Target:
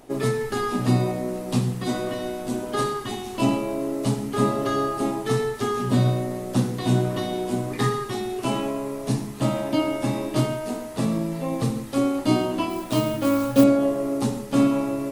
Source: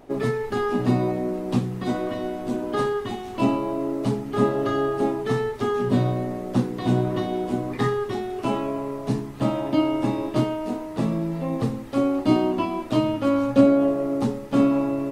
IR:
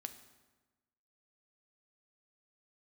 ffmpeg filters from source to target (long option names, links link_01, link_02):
-filter_complex "[1:a]atrim=start_sample=2205,afade=type=out:start_time=0.14:duration=0.01,atrim=end_sample=6615,asetrate=23373,aresample=44100[link_01];[0:a][link_01]afir=irnorm=-1:irlink=0,asettb=1/sr,asplit=3[link_02][link_03][link_04];[link_02]atrim=end=12.704[link_05];[link_03]atrim=start=12.7:end=13.64,asetpts=PTS-STARTPTS,afade=type=in:duration=0.004:curve=qsin,afade=type=out:start_time=0.936:duration=0.004:curve=qsin,acrusher=bits=8:mode=log:mix=0:aa=0.000001[link_06];[link_04]atrim=start=13.636[link_07];[link_05][link_06]acrossfade=duration=0.004:curve1=hsin:curve2=qsin[link_08];[link_08][link_07]acrossfade=duration=0.004:curve1=qsin:curve2=hsin,crystalizer=i=2.5:c=0"